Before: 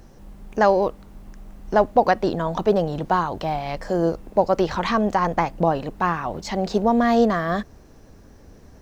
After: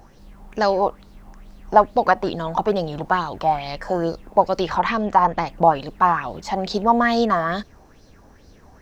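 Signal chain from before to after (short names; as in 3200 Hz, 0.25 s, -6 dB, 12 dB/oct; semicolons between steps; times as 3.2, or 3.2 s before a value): 4.78–5.47 high shelf 5800 Hz -8.5 dB; LFO bell 2.3 Hz 790–4700 Hz +13 dB; gain -2.5 dB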